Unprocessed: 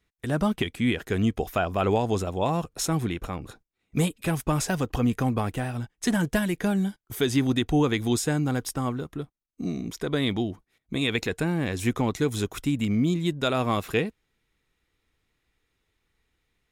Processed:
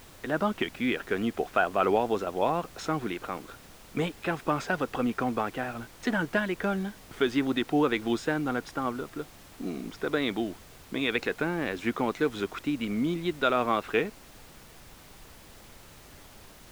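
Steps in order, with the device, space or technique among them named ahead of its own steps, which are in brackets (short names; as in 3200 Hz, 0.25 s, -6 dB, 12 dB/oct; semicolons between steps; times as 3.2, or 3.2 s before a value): horn gramophone (BPF 280–3100 Hz; bell 1400 Hz +5 dB 0.37 oct; wow and flutter; pink noise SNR 20 dB)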